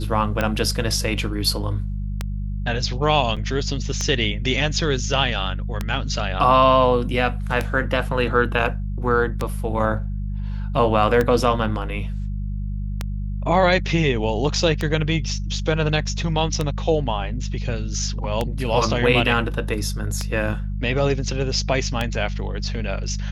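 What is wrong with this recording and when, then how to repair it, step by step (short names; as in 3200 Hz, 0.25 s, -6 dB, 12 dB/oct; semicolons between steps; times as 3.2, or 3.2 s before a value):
hum 50 Hz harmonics 4 -26 dBFS
tick 33 1/3 rpm -8 dBFS
3.36–3.37 gap 6.6 ms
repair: de-click; de-hum 50 Hz, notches 4; interpolate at 3.36, 6.6 ms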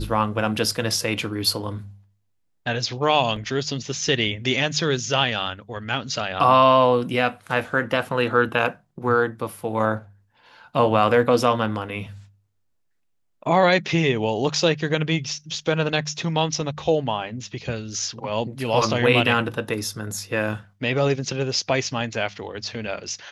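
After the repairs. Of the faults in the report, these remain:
none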